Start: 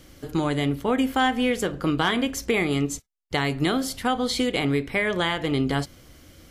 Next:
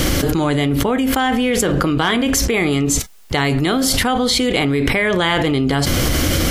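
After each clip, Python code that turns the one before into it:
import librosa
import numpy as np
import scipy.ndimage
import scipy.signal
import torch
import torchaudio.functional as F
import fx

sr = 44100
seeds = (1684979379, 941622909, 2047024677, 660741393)

y = fx.env_flatten(x, sr, amount_pct=100)
y = F.gain(torch.from_numpy(y), 2.5).numpy()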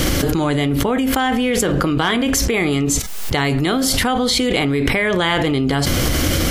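y = fx.pre_swell(x, sr, db_per_s=32.0)
y = F.gain(torch.from_numpy(y), -1.0).numpy()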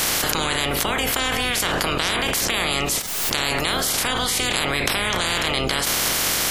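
y = fx.spec_clip(x, sr, under_db=28)
y = F.gain(torch.from_numpy(y), -4.5).numpy()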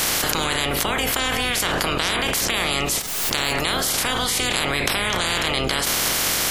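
y = x + 10.0 ** (-21.5 / 20.0) * np.pad(x, (int(226 * sr / 1000.0), 0))[:len(x)]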